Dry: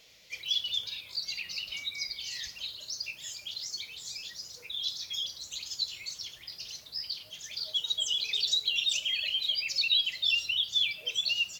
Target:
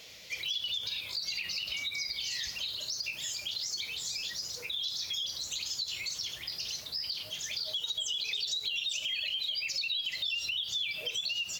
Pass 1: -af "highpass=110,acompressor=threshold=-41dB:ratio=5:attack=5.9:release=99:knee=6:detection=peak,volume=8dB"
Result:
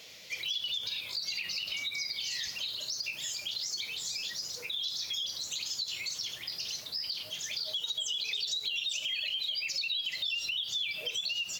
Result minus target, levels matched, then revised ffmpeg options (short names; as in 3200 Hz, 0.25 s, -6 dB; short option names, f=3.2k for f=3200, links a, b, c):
125 Hz band -3.0 dB
-af "highpass=39,acompressor=threshold=-41dB:ratio=5:attack=5.9:release=99:knee=6:detection=peak,volume=8dB"